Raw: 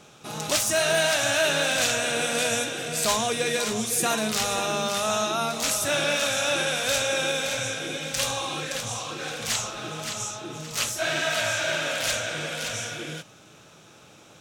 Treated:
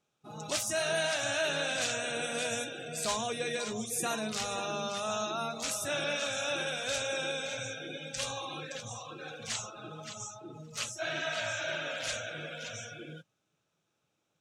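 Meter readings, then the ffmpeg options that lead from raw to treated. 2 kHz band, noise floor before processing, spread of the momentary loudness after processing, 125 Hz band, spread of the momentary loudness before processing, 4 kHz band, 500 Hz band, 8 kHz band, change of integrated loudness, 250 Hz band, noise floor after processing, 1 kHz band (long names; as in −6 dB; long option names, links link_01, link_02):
−8.5 dB, −52 dBFS, 12 LU, −8.5 dB, 10 LU, −9.5 dB, −8.0 dB, −10.0 dB, −9.0 dB, −8.5 dB, −80 dBFS, −8.5 dB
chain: -af "afftdn=noise_reduction=21:noise_floor=-34,volume=-8dB"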